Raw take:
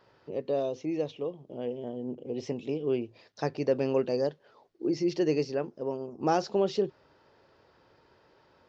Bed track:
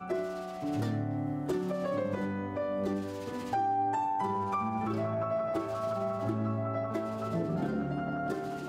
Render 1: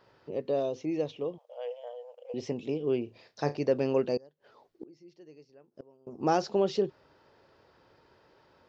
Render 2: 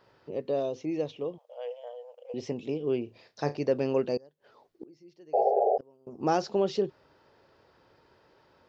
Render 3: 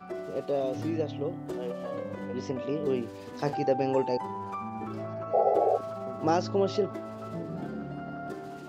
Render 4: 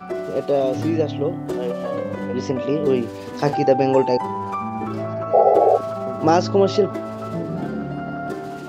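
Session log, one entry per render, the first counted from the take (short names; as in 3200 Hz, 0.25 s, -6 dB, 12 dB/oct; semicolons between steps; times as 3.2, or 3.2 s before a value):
1.38–2.34 brick-wall FIR high-pass 470 Hz; 3.03–3.57 flutter echo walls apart 5.9 m, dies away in 0.2 s; 4.17–6.07 flipped gate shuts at -31 dBFS, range -26 dB
5.33–5.78 painted sound noise 380–830 Hz -24 dBFS
add bed track -4.5 dB
gain +10 dB; limiter -3 dBFS, peak gain reduction 1 dB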